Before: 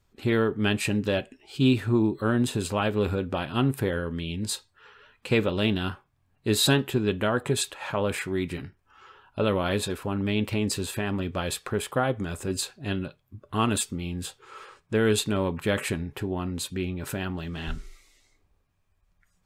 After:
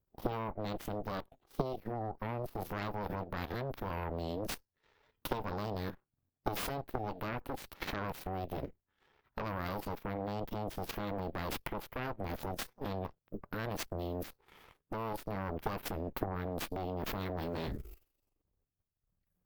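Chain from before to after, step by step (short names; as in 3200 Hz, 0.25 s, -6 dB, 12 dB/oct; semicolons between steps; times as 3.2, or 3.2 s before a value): EQ curve 460 Hz 0 dB, 2200 Hz -14 dB, 7500 Hz -14 dB, 12000 Hz +10 dB; compressor 10:1, threshold -36 dBFS, peak gain reduction 19.5 dB; added harmonics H 2 -14 dB, 3 -11 dB, 6 -8 dB, 8 -45 dB, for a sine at -24 dBFS; level quantiser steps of 11 dB; formant shift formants +4 st; gain +6.5 dB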